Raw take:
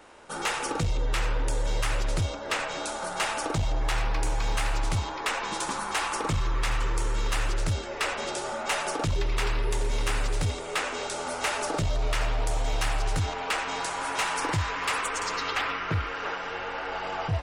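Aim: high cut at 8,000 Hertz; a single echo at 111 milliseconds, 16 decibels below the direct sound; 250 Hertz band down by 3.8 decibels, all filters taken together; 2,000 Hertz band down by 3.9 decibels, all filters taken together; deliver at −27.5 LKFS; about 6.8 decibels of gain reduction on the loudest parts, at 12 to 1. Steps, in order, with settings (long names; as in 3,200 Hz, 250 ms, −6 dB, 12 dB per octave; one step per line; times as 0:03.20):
low-pass filter 8,000 Hz
parametric band 250 Hz −6 dB
parametric band 2,000 Hz −5 dB
downward compressor 12 to 1, threshold −30 dBFS
single-tap delay 111 ms −16 dB
level +7.5 dB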